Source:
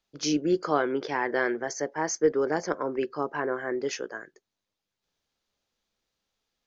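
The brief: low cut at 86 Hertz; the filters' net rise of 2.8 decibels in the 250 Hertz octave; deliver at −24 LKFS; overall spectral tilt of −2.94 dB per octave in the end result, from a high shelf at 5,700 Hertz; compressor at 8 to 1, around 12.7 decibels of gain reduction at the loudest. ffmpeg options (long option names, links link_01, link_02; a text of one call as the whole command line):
ffmpeg -i in.wav -af "highpass=86,equalizer=frequency=250:width_type=o:gain=4,highshelf=frequency=5700:gain=8.5,acompressor=threshold=-30dB:ratio=8,volume=11dB" out.wav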